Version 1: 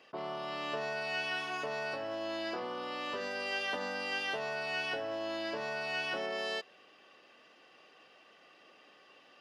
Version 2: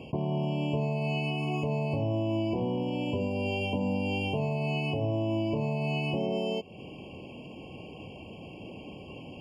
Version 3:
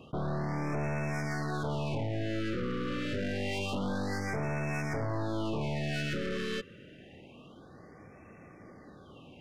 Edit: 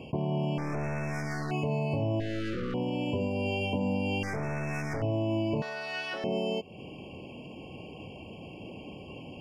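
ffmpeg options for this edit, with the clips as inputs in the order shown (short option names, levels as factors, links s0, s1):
-filter_complex "[2:a]asplit=3[s0][s1][s2];[1:a]asplit=5[s3][s4][s5][s6][s7];[s3]atrim=end=0.582[s8];[s0]atrim=start=0.578:end=1.512[s9];[s4]atrim=start=1.508:end=2.202[s10];[s1]atrim=start=2.198:end=2.742[s11];[s5]atrim=start=2.738:end=4.232[s12];[s2]atrim=start=4.228:end=5.022[s13];[s6]atrim=start=5.018:end=5.622[s14];[0:a]atrim=start=5.618:end=6.242[s15];[s7]atrim=start=6.238[s16];[s8][s9]acrossfade=d=0.004:c1=hsin:c2=hsin[s17];[s17][s10]acrossfade=d=0.004:c1=hsin:c2=hsin[s18];[s18][s11]acrossfade=d=0.004:c1=hsin:c2=hsin[s19];[s19][s12]acrossfade=d=0.004:c1=hsin:c2=hsin[s20];[s20][s13]acrossfade=d=0.004:c1=hsin:c2=hsin[s21];[s21][s14]acrossfade=d=0.004:c1=hsin:c2=hsin[s22];[s22][s15]acrossfade=d=0.004:c1=hsin:c2=hsin[s23];[s23][s16]acrossfade=d=0.004:c1=hsin:c2=hsin"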